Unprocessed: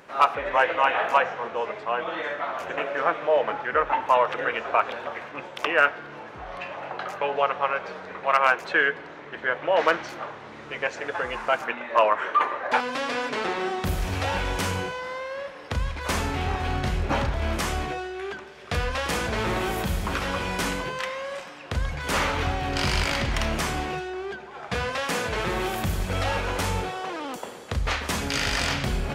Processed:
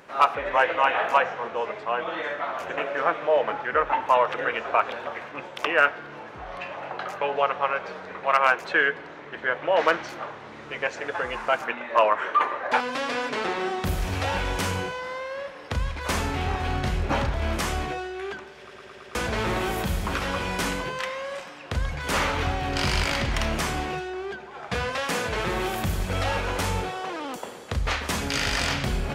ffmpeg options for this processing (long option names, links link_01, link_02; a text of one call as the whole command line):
ffmpeg -i in.wav -filter_complex "[0:a]asplit=6[link_01][link_02][link_03][link_04][link_05][link_06];[link_01]atrim=end=18.712[link_07];[link_02]atrim=start=18.598:end=18.712[link_08];[link_03]atrim=start=18.598:end=18.712[link_09];[link_04]atrim=start=18.598:end=18.712[link_10];[link_05]atrim=start=18.598:end=18.712[link_11];[link_06]atrim=start=19.148[link_12];[link_07][link_08]acrossfade=duration=0.004:curve1=hsin:curve2=hsin[link_13];[link_13][link_09]acrossfade=duration=0.004:curve1=hsin:curve2=hsin[link_14];[link_14][link_10]acrossfade=duration=0.004:curve1=hsin:curve2=hsin[link_15];[link_15][link_11]acrossfade=duration=0.004:curve1=hsin:curve2=hsin[link_16];[link_16][link_12]acrossfade=duration=0.004:curve1=hsin:curve2=hsin" out.wav